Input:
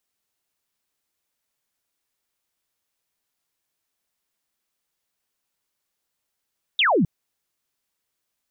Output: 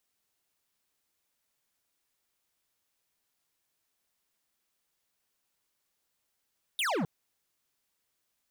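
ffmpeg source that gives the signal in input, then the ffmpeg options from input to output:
-f lavfi -i "aevalsrc='0.168*clip(t/0.002,0,1)*clip((0.26-t)/0.002,0,1)*sin(2*PI*3800*0.26/log(140/3800)*(exp(log(140/3800)*t/0.26)-1))':d=0.26:s=44100"
-af "volume=29.5dB,asoftclip=hard,volume=-29.5dB"

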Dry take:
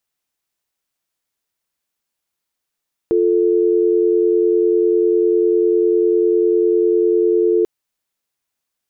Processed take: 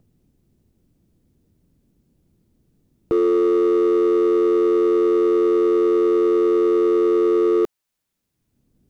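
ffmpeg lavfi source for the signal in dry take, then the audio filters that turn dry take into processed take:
-f lavfi -i "aevalsrc='0.188*(sin(2*PI*350*t)+sin(2*PI*440*t))':d=4.54:s=44100"
-filter_complex "[0:a]acrossover=split=300[a][b];[a]acompressor=mode=upward:threshold=-34dB:ratio=2.5[c];[b]volume=17.5dB,asoftclip=hard,volume=-17.5dB[d];[c][d]amix=inputs=2:normalize=0"

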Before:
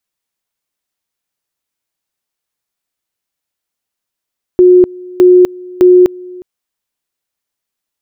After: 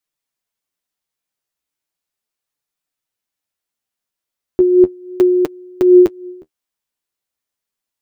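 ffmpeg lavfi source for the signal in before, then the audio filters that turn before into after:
-f lavfi -i "aevalsrc='pow(10,(-1.5-24*gte(mod(t,0.61),0.25))/20)*sin(2*PI*362*t)':d=1.83:s=44100"
-af "flanger=delay=6.5:depth=8.7:regen=31:speed=0.36:shape=sinusoidal"

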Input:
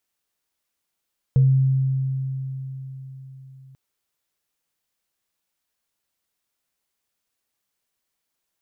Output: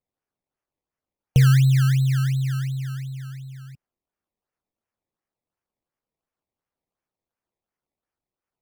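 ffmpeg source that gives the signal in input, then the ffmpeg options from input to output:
-f lavfi -i "aevalsrc='0.266*pow(10,-3*t/4.36)*sin(2*PI*133*t)+0.0299*pow(10,-3*t/0.3)*sin(2*PI*470*t)':d=2.39:s=44100"
-filter_complex "[0:a]afftdn=nr=19:nf=-45,asplit=2[a][b];[b]acompressor=threshold=-26dB:ratio=12,volume=1.5dB[c];[a][c]amix=inputs=2:normalize=0,acrusher=samples=21:mix=1:aa=0.000001:lfo=1:lforange=21:lforate=2.8"

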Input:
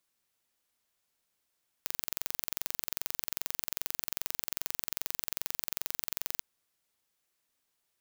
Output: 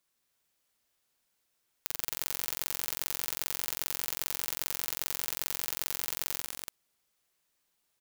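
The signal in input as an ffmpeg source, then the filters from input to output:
-f lavfi -i "aevalsrc='0.562*eq(mod(n,1960),0)':d=4.56:s=44100"
-af "aecho=1:1:52.48|183.7|224.5|288.6:0.501|0.316|0.316|0.501"

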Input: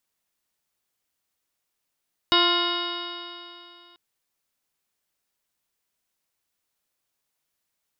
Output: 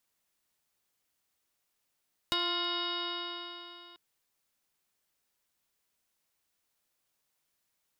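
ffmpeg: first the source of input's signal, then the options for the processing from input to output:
-f lavfi -i "aevalsrc='0.0668*pow(10,-3*t/2.69)*sin(2*PI*346.29*t)+0.0376*pow(10,-3*t/2.69)*sin(2*PI*694.35*t)+0.075*pow(10,-3*t/2.69)*sin(2*PI*1045.91*t)+0.0531*pow(10,-3*t/2.69)*sin(2*PI*1402.7*t)+0.0188*pow(10,-3*t/2.69)*sin(2*PI*1766.38*t)+0.0299*pow(10,-3*t/2.69)*sin(2*PI*2138.58*t)+0.00841*pow(10,-3*t/2.69)*sin(2*PI*2520.86*t)+0.0841*pow(10,-3*t/2.69)*sin(2*PI*2914.69*t)+0.0188*pow(10,-3*t/2.69)*sin(2*PI*3321.49*t)+0.106*pow(10,-3*t/2.69)*sin(2*PI*3742.56*t)+0.0133*pow(10,-3*t/2.69)*sin(2*PI*4179.15*t)+0.0266*pow(10,-3*t/2.69)*sin(2*PI*4632.41*t)+0.0224*pow(10,-3*t/2.69)*sin(2*PI*5103.4*t)':d=1.64:s=44100"
-filter_complex "[0:a]acrossover=split=820|4300[a][b][c];[a]acompressor=threshold=-41dB:ratio=4[d];[b]acompressor=threshold=-35dB:ratio=4[e];[c]acompressor=threshold=-39dB:ratio=4[f];[d][e][f]amix=inputs=3:normalize=0,asoftclip=type=hard:threshold=-23dB"

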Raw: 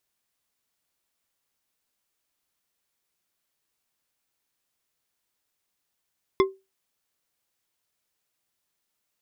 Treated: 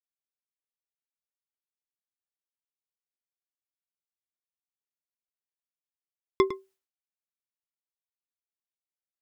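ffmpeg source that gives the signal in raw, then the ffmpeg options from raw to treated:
-f lavfi -i "aevalsrc='0.224*pow(10,-3*t/0.24)*sin(2*PI*385*t)+0.126*pow(10,-3*t/0.118)*sin(2*PI*1061.4*t)+0.0708*pow(10,-3*t/0.074)*sin(2*PI*2080.5*t)+0.0398*pow(10,-3*t/0.052)*sin(2*PI*3439.2*t)+0.0224*pow(10,-3*t/0.039)*sin(2*PI*5135.9*t)':d=0.89:s=44100"
-filter_complex "[0:a]agate=range=-33dB:threshold=-57dB:ratio=3:detection=peak,asplit=2[a][b];[b]adelay=105,volume=-12dB,highshelf=f=4k:g=-2.36[c];[a][c]amix=inputs=2:normalize=0"

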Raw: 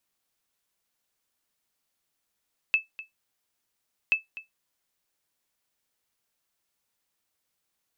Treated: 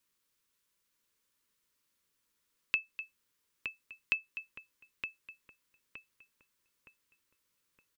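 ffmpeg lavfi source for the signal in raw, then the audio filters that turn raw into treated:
-f lavfi -i "aevalsrc='0.211*(sin(2*PI*2620*mod(t,1.38))*exp(-6.91*mod(t,1.38)/0.15)+0.141*sin(2*PI*2620*max(mod(t,1.38)-0.25,0))*exp(-6.91*max(mod(t,1.38)-0.25,0)/0.15))':d=2.76:s=44100"
-filter_complex "[0:a]acompressor=threshold=-30dB:ratio=2.5,asuperstop=centerf=720:order=4:qfactor=2.3,asplit=2[a][b];[b]adelay=917,lowpass=f=1.8k:p=1,volume=-4dB,asplit=2[c][d];[d]adelay=917,lowpass=f=1.8k:p=1,volume=0.49,asplit=2[e][f];[f]adelay=917,lowpass=f=1.8k:p=1,volume=0.49,asplit=2[g][h];[h]adelay=917,lowpass=f=1.8k:p=1,volume=0.49,asplit=2[i][j];[j]adelay=917,lowpass=f=1.8k:p=1,volume=0.49,asplit=2[k][l];[l]adelay=917,lowpass=f=1.8k:p=1,volume=0.49[m];[c][e][g][i][k][m]amix=inputs=6:normalize=0[n];[a][n]amix=inputs=2:normalize=0"

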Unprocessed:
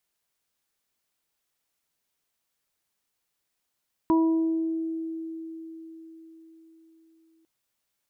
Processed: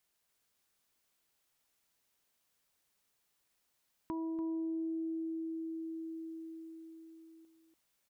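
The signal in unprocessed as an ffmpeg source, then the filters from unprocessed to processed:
-f lavfi -i "aevalsrc='0.133*pow(10,-3*t/4.61)*sin(2*PI*325*t)+0.02*pow(10,-3*t/1.64)*sin(2*PI*650*t)+0.0668*pow(10,-3*t/0.73)*sin(2*PI*975*t)':d=3.35:s=44100"
-filter_complex "[0:a]alimiter=level_in=3dB:limit=-24dB:level=0:latency=1,volume=-3dB,asplit=2[a][b];[b]aecho=0:1:289:0.596[c];[a][c]amix=inputs=2:normalize=0,acompressor=threshold=-41dB:ratio=2.5"

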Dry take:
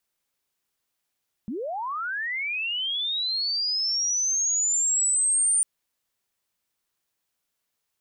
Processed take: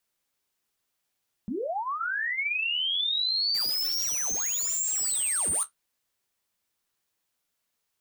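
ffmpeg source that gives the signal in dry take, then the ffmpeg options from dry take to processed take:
-f lavfi -i "aevalsrc='pow(10,(-28.5+10*t/4.15)/20)*sin(2*PI*(190*t+8910*t*t/(2*4.15)))':d=4.15:s=44100"
-filter_complex "[0:a]asplit=2[a][b];[b]aeval=exprs='(mod(15*val(0)+1,2)-1)/15':c=same,volume=-4dB[c];[a][c]amix=inputs=2:normalize=0,flanger=delay=8:depth=6.3:regen=-49:speed=1.5:shape=triangular"

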